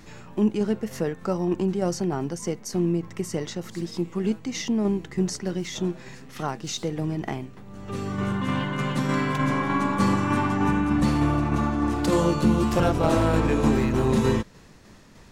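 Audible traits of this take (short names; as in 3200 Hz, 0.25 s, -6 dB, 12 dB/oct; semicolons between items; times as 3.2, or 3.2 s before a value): tremolo saw down 3.3 Hz, depth 35%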